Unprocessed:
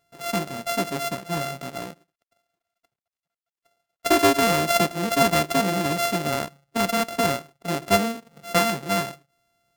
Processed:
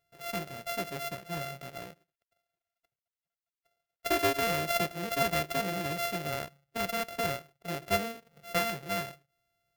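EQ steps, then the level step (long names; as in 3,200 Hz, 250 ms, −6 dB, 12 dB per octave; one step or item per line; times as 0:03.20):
octave-band graphic EQ 250/1,000/4,000/8,000 Hz −11/−8/−3/−7 dB
−4.5 dB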